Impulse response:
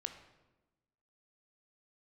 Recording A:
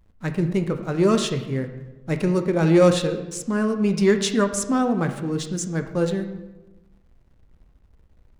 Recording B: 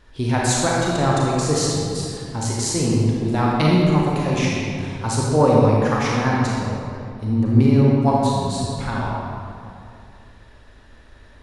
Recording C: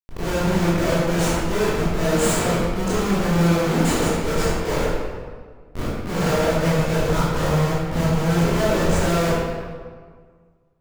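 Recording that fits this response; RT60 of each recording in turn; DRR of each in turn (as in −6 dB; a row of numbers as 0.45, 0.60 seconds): A; 1.1, 2.5, 1.7 seconds; 6.5, −4.5, −10.5 decibels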